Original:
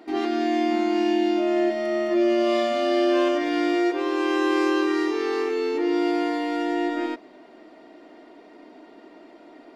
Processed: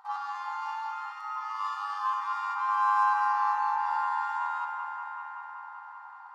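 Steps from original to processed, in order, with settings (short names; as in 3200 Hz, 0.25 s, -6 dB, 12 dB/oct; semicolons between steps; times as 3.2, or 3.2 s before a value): EQ curve 1200 Hz 0 dB, 2100 Hz -25 dB, 6500 Hz -16 dB; granular stretch 0.65×, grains 21 ms; brick-wall FIR high-pass 770 Hz; on a send: analogue delay 0.191 s, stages 4096, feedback 82%, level -6 dB; on the sum: Schroeder reverb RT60 3.3 s, combs from 27 ms, DRR 7 dB; gain +5.5 dB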